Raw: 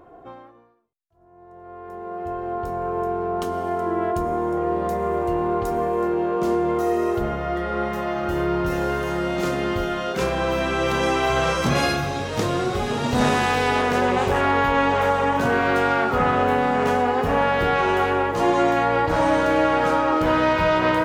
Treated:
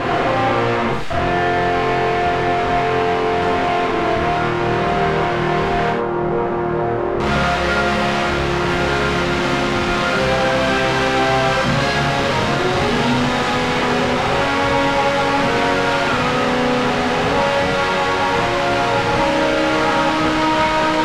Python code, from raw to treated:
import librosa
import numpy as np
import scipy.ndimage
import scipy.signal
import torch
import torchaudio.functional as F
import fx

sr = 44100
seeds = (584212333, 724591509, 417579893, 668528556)

y = np.sign(x) * np.sqrt(np.mean(np.square(x)))
y = fx.lowpass(y, sr, hz=fx.steps((0.0, 2600.0), (5.9, 1100.0), (7.2, 3900.0)), slope=12)
y = fx.rev_gated(y, sr, seeds[0], gate_ms=130, shape='flat', drr_db=-2.0)
y = y * librosa.db_to_amplitude(1.5)